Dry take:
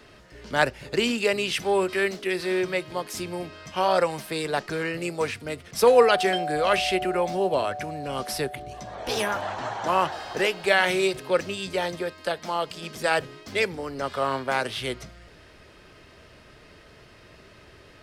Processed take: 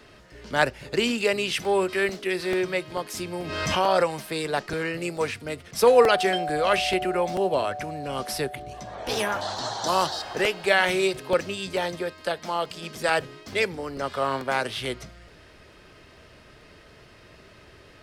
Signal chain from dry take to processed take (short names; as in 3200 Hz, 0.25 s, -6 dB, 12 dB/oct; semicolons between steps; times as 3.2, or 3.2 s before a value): 9.41–10.22 resonant high shelf 3200 Hz +9 dB, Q 3; crackling interface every 0.44 s, samples 64, repeat, from 0.77; 3.35–4.12 backwards sustainer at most 34 dB/s